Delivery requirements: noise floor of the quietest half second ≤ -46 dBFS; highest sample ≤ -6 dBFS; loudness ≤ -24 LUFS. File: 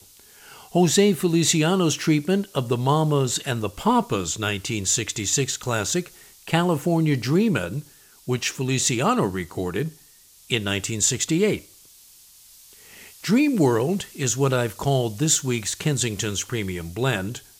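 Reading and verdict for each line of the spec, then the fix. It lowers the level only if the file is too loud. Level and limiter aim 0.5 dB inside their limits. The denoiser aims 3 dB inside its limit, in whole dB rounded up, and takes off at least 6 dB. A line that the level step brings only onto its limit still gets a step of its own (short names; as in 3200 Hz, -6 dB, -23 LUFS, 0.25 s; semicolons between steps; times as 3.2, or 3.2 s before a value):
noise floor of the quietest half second -52 dBFS: OK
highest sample -5.0 dBFS: fail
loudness -22.5 LUFS: fail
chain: gain -2 dB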